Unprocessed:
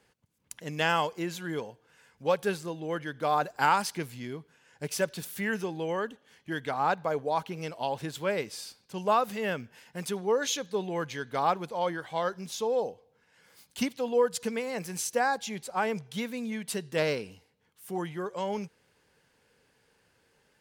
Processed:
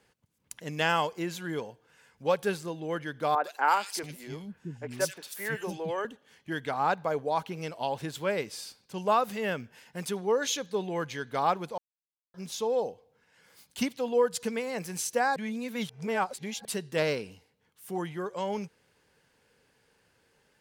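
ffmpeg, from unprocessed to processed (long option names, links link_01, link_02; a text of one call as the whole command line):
ffmpeg -i in.wav -filter_complex "[0:a]asettb=1/sr,asplit=3[link_01][link_02][link_03];[link_01]atrim=end=3.354[link_04];[link_02]atrim=start=3.35:end=6.05,asetpts=PTS-STARTPTS,afade=type=in:duration=0.004:curve=qsin,afade=type=out:start_time=2.696:duration=0.004:curve=qsin,acrossover=split=300|2400[link_05][link_06][link_07];[link_07]adelay=90[link_08];[link_05]adelay=680[link_09];[link_09][link_06][link_08]amix=inputs=3:normalize=0,atrim=end_sample=119070[link_10];[link_03]atrim=start=6.046[link_11];[link_04][link_10]acrossfade=duration=0.004:curve1=hsin:curve2=qsin[link_12];[link_12][link_11]acrossfade=duration=0.004:curve1=qsin:curve2=hsin,asplit=5[link_13][link_14][link_15][link_16][link_17];[link_13]atrim=end=11.78,asetpts=PTS-STARTPTS,afade=type=out:start_time=11.776:duration=0.004:curve=hsin[link_18];[link_14]atrim=start=11.78:end=12.34,asetpts=PTS-STARTPTS,volume=0[link_19];[link_15]atrim=start=12.34:end=15.362,asetpts=PTS-STARTPTS,afade=type=in:duration=0.004:curve=hsin[link_20];[link_16]atrim=start=15.358:end=16.652,asetpts=PTS-STARTPTS,areverse[link_21];[link_17]atrim=start=16.648[link_22];[link_18][link_19][link_20]concat=n=3:v=0:a=1[link_23];[link_23][link_21]acrossfade=duration=0.004:curve1=hsin:curve2=hsin[link_24];[link_24][link_22]acrossfade=duration=0.004:curve1=hsin:curve2=hsin" out.wav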